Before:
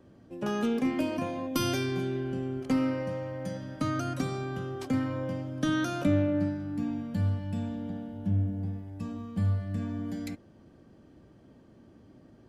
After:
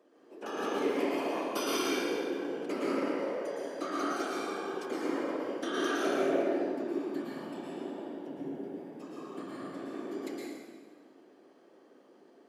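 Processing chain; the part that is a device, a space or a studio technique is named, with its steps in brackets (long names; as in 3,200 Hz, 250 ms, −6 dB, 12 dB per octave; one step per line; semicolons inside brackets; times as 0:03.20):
whispering ghost (random phases in short frames; high-pass filter 320 Hz 24 dB per octave; convolution reverb RT60 1.6 s, pre-delay 106 ms, DRR −5 dB)
level −5 dB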